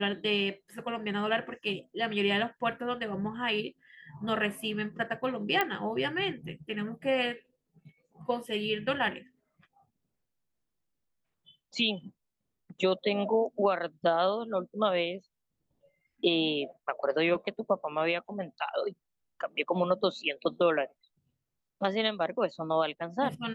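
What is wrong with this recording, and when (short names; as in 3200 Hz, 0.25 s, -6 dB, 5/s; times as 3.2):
5.61 pop -13 dBFS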